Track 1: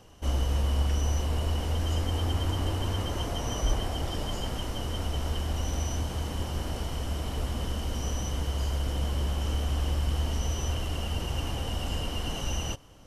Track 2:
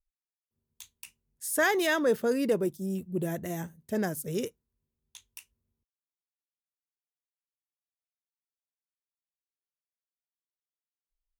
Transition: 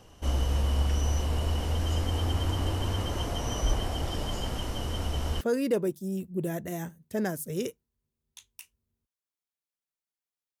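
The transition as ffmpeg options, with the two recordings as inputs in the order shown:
ffmpeg -i cue0.wav -i cue1.wav -filter_complex "[0:a]apad=whole_dur=10.6,atrim=end=10.6,atrim=end=5.412[link_01];[1:a]atrim=start=2.188:end=7.38[link_02];[link_01][link_02]acrossfade=duration=0.004:curve1=hsin:curve2=hsin" out.wav

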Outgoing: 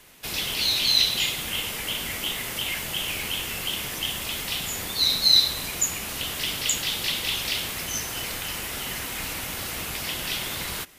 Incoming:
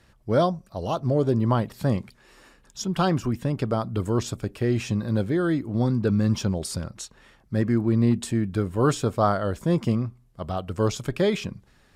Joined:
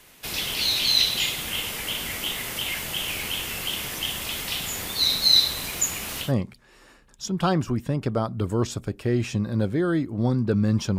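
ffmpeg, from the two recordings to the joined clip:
ffmpeg -i cue0.wav -i cue1.wav -filter_complex "[0:a]asettb=1/sr,asplit=3[link_01][link_02][link_03];[link_01]atrim=end=4.614[link_04];[link_02]atrim=start=4.61:end=6.33,asetpts=PTS-STARTPTS,afade=type=in:duration=0.004:curve=qsin,afade=type=out:start_time=1.716:duration=0.004:curve=qsin,acrusher=bits=7:mix=0:aa=0.5[link_05];[link_03]atrim=start=6.326[link_06];[link_04][link_05]acrossfade=duration=0.004:curve1=hsin:curve2=qsin[link_07];[link_07][link_06]acrossfade=duration=0.004:curve1=qsin:curve2=hsin,apad=whole_dur=10.98,atrim=end=10.98,atrim=end=6.33,asetpts=PTS-STARTPTS[link_08];[1:a]atrim=start=1.75:end=6.54,asetpts=PTS-STARTPTS[link_09];[link_08][link_09]acrossfade=duration=0.14:curve1=tri:curve2=tri" out.wav

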